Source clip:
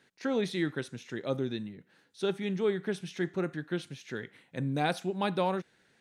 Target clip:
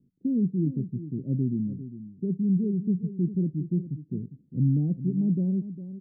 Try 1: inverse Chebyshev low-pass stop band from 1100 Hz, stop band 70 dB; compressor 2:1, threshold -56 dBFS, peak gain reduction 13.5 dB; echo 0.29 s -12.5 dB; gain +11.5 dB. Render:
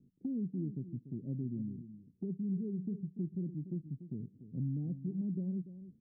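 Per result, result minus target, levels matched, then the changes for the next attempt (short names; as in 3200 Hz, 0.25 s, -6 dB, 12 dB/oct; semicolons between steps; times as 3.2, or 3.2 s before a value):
compressor: peak gain reduction +13.5 dB; echo 0.114 s early
remove: compressor 2:1, threshold -56 dBFS, peak gain reduction 13.5 dB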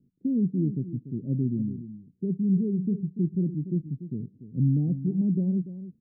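echo 0.114 s early
change: echo 0.404 s -12.5 dB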